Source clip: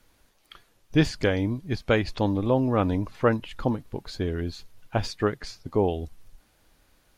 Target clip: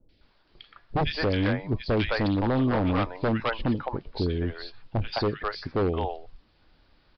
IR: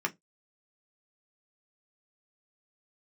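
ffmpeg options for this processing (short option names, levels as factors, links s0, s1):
-filter_complex "[0:a]acrossover=split=580|2100[s0][s1][s2];[s2]adelay=90[s3];[s1]adelay=210[s4];[s0][s4][s3]amix=inputs=3:normalize=0,asplit=2[s5][s6];[1:a]atrim=start_sample=2205[s7];[s6][s7]afir=irnorm=-1:irlink=0,volume=0.0501[s8];[s5][s8]amix=inputs=2:normalize=0,aeval=exprs='0.1*(abs(mod(val(0)/0.1+3,4)-2)-1)':c=same,aresample=11025,aresample=44100,volume=1.26"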